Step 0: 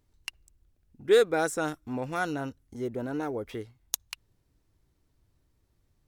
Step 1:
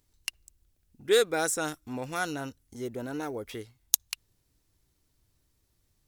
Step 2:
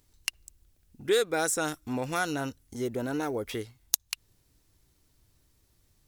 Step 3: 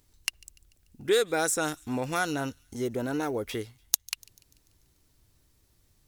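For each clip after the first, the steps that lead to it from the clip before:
high-shelf EQ 2,800 Hz +11.5 dB; level −3 dB
downward compressor 2 to 1, threshold −32 dBFS, peak gain reduction 9 dB; level +5 dB
delay with a high-pass on its return 146 ms, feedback 51%, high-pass 3,000 Hz, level −23 dB; level +1 dB

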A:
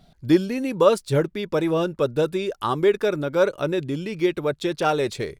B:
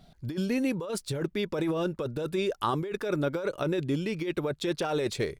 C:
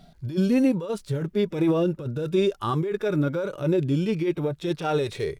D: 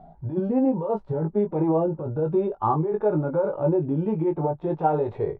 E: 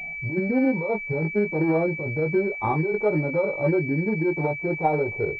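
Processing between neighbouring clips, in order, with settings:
compressor whose output falls as the input rises −24 dBFS, ratio −1; level −4.5 dB
harmonic and percussive parts rebalanced percussive −17 dB; level +8 dB
downward compressor, threshold −22 dBFS, peak gain reduction 6 dB; low-pass with resonance 840 Hz, resonance Q 4.9; double-tracking delay 19 ms −5 dB
switching amplifier with a slow clock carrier 2,300 Hz

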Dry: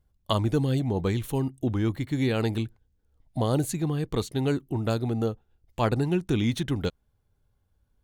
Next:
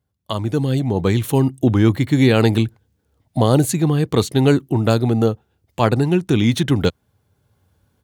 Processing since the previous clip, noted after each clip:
high-pass filter 81 Hz 24 dB per octave
automatic gain control gain up to 14.5 dB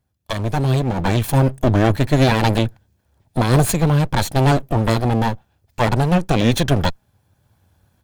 lower of the sound and its delayed copy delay 1.2 ms
level +3.5 dB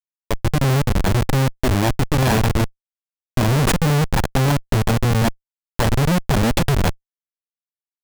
comparator with hysteresis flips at −17.5 dBFS
level +2.5 dB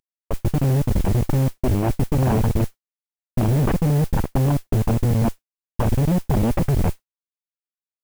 variable-slope delta modulation 16 kbit/s
noise that follows the level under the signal 22 dB

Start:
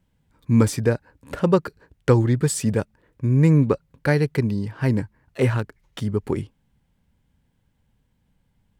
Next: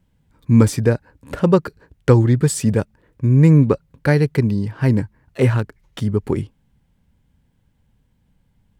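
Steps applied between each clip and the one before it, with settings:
low-shelf EQ 320 Hz +3.5 dB
level +2 dB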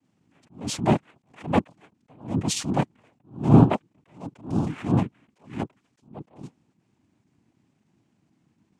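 cochlear-implant simulation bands 4
level that may rise only so fast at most 160 dB per second
level −1 dB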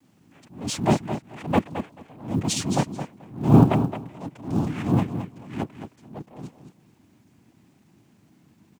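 mu-law and A-law mismatch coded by mu
repeating echo 218 ms, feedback 17%, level −9.5 dB

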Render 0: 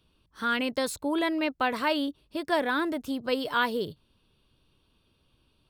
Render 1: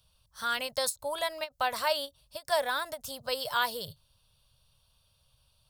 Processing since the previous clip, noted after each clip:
drawn EQ curve 130 Hz 0 dB, 340 Hz −27 dB, 560 Hz 0 dB, 2,400 Hz −5 dB, 5,300 Hz +8 dB, 10,000 Hz +10 dB
every ending faded ahead of time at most 400 dB per second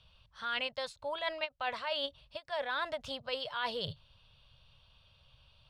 reversed playback
downward compressor 12 to 1, threshold −38 dBFS, peak gain reduction 16.5 dB
reversed playback
low-pass with resonance 2,900 Hz, resonance Q 1.7
level +5 dB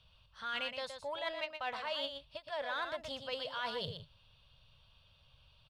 in parallel at −11.5 dB: soft clipping −35.5 dBFS, distortion −9 dB
on the sum: single-tap delay 119 ms −7.5 dB
level −4.5 dB

